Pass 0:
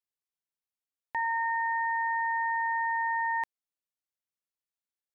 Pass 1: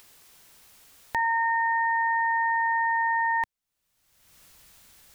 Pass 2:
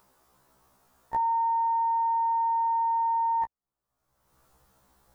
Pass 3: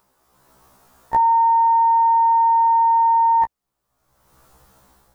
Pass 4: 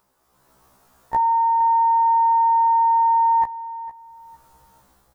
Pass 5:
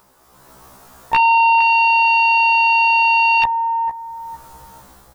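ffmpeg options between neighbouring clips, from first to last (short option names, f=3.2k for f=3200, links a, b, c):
-af "acompressor=mode=upward:threshold=-34dB:ratio=2.5,asubboost=boost=3:cutoff=170,volume=5dB"
-af "highshelf=f=1.6k:t=q:w=1.5:g=-12.5,afftfilt=real='re*1.73*eq(mod(b,3),0)':imag='im*1.73*eq(mod(b,3),0)':win_size=2048:overlap=0.75,volume=1dB"
-af "dynaudnorm=f=160:g=5:m=10.5dB"
-af "aecho=1:1:458|916|1374:0.158|0.0412|0.0107,volume=-3dB"
-af "aeval=exprs='0.316*sin(PI/2*2.82*val(0)/0.316)':c=same"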